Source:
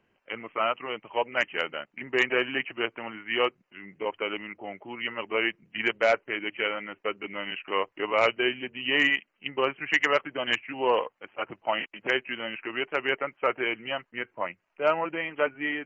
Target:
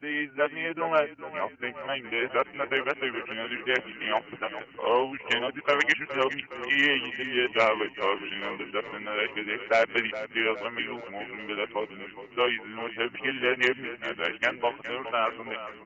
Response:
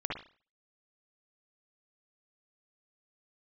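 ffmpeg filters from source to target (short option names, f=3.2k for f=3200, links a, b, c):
-filter_complex "[0:a]areverse,asplit=7[a][b][c][d][e][f][g];[b]adelay=414,afreqshift=-32,volume=-13dB[h];[c]adelay=828,afreqshift=-64,volume=-17.7dB[i];[d]adelay=1242,afreqshift=-96,volume=-22.5dB[j];[e]adelay=1656,afreqshift=-128,volume=-27.2dB[k];[f]adelay=2070,afreqshift=-160,volume=-31.9dB[l];[g]adelay=2484,afreqshift=-192,volume=-36.7dB[m];[a][h][i][j][k][l][m]amix=inputs=7:normalize=0"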